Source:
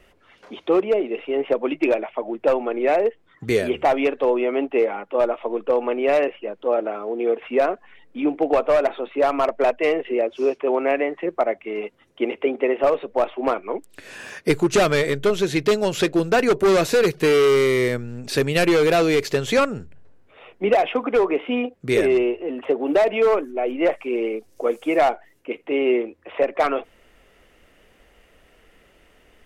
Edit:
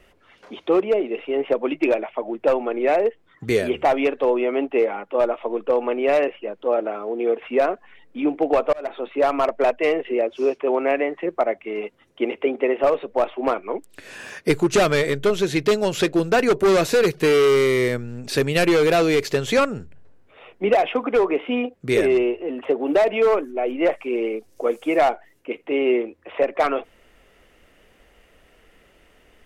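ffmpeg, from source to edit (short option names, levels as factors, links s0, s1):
-filter_complex "[0:a]asplit=2[s0][s1];[s0]atrim=end=8.73,asetpts=PTS-STARTPTS,afade=t=out:st=8.726:d=0.004:c=hsin[s2];[s1]atrim=start=8.73,asetpts=PTS-STARTPTS,afade=t=in:d=0.31[s3];[s2][s3]concat=n=2:v=0:a=1"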